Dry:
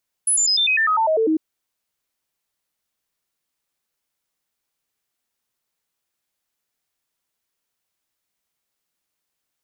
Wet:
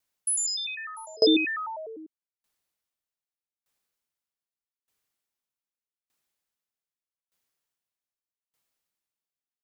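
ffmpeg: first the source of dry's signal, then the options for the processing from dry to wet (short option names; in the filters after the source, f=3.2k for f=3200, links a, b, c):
-f lavfi -i "aevalsrc='0.178*clip(min(mod(t,0.1),0.1-mod(t,0.1))/0.005,0,1)*sin(2*PI*10100*pow(2,-floor(t/0.1)/2)*mod(t,0.1))':d=1.1:s=44100"
-filter_complex "[0:a]asplit=2[a][b];[b]aecho=0:1:79|695:0.376|0.562[c];[a][c]amix=inputs=2:normalize=0,aeval=exprs='val(0)*pow(10,-29*if(lt(mod(0.82*n/s,1),2*abs(0.82)/1000),1-mod(0.82*n/s,1)/(2*abs(0.82)/1000),(mod(0.82*n/s,1)-2*abs(0.82)/1000)/(1-2*abs(0.82)/1000))/20)':c=same"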